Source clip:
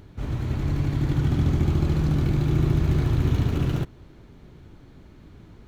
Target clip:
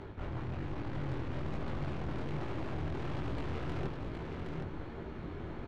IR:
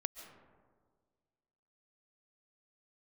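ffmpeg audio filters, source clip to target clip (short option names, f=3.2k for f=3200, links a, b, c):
-filter_complex "[0:a]aemphasis=mode=reproduction:type=75fm,bandreject=f=50:t=h:w=6,bandreject=f=100:t=h:w=6,bandreject=f=150:t=h:w=6,bandreject=f=200:t=h:w=6,bandreject=f=250:t=h:w=6,bandreject=f=300:t=h:w=6,acrossover=split=340|3300[a][b][c];[b]acontrast=76[d];[a][d][c]amix=inputs=3:normalize=0,asplit=2[e][f];[f]adelay=13,volume=-13dB[g];[e][g]amix=inputs=2:normalize=0,aeval=exprs='(tanh(39.8*val(0)+0.45)-tanh(0.45))/39.8':c=same,flanger=delay=17.5:depth=7.2:speed=1.2,areverse,acompressor=threshold=-42dB:ratio=6,areverse,aecho=1:1:767:0.562,volume=7dB"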